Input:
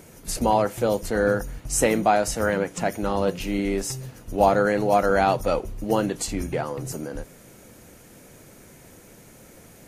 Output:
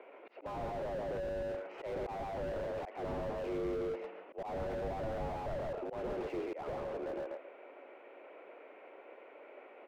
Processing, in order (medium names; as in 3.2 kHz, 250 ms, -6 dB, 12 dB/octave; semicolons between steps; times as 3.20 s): mistuned SSB +56 Hz 340–2500 Hz; in parallel at +2 dB: peak limiter -15.5 dBFS, peak gain reduction 9 dB; on the sum: peaking EQ 1.7 kHz -9.5 dB 0.26 oct; on a send: feedback delay 138 ms, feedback 17%, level -4 dB; on the sum: slow attack 267 ms; slew-rate limiter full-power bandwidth 21 Hz; trim -8.5 dB